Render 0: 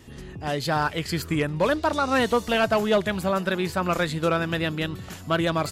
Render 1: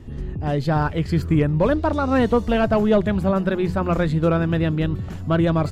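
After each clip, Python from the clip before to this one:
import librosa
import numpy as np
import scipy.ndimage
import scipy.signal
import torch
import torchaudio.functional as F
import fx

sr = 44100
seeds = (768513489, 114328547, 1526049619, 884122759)

y = fx.tilt_eq(x, sr, slope=-3.5)
y = fx.hum_notches(y, sr, base_hz=60, count=3)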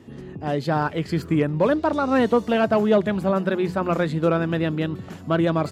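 y = scipy.signal.sosfilt(scipy.signal.butter(2, 190.0, 'highpass', fs=sr, output='sos'), x)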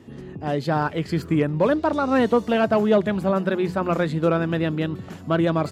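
y = x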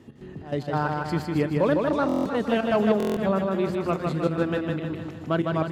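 y = fx.step_gate(x, sr, bpm=144, pattern='x.xx.x.x', floor_db=-12.0, edge_ms=4.5)
y = fx.echo_feedback(y, sr, ms=155, feedback_pct=54, wet_db=-3.5)
y = fx.buffer_glitch(y, sr, at_s=(2.07, 2.98), block=1024, repeats=7)
y = y * 10.0 ** (-3.0 / 20.0)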